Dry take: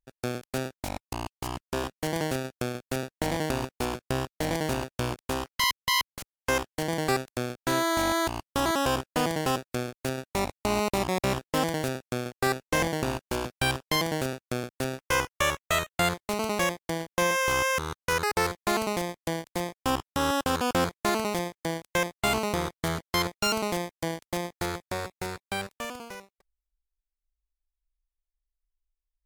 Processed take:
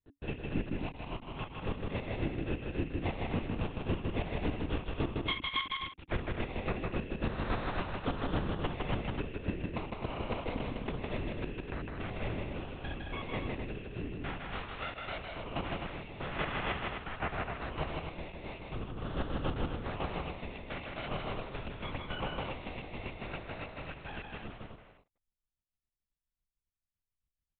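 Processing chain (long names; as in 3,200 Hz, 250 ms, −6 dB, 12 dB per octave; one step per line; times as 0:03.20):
loose part that buzzes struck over −42 dBFS, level −26 dBFS
speed change +6%
parametric band 280 Hz +14 dB 0.21 octaves
linear-prediction vocoder at 8 kHz whisper
brickwall limiter −16.5 dBFS, peak gain reduction 9 dB
square-wave tremolo 3.6 Hz, depth 60%, duty 20%
loudspeakers that aren't time-aligned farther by 54 metres −3 dB, 88 metres −7 dB
level −5.5 dB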